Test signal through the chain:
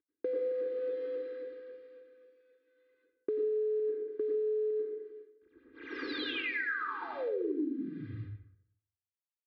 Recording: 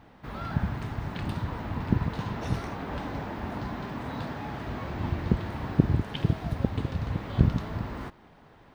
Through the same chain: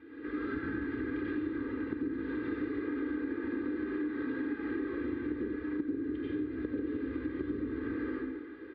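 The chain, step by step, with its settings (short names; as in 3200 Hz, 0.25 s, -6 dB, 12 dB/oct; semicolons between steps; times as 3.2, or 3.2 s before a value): CVSD 32 kbps; speaker cabinet 150–4100 Hz, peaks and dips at 210 Hz +3 dB, 300 Hz +9 dB, 690 Hz -6 dB, 1100 Hz -6 dB, 1600 Hz +6 dB, 2900 Hz -7 dB; plate-style reverb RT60 0.77 s, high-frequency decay 0.65×, pre-delay 80 ms, DRR -6 dB; vocal rider within 4 dB 0.5 s; air absorption 450 m; fixed phaser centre 320 Hz, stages 4; comb 2.5 ms, depth 94%; compressor 5:1, threshold -30 dBFS; gain -2.5 dB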